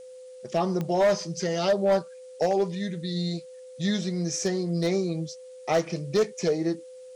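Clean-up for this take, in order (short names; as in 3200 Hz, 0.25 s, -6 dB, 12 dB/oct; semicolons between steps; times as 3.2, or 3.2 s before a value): clip repair -17 dBFS; de-click; notch 510 Hz, Q 30; expander -37 dBFS, range -21 dB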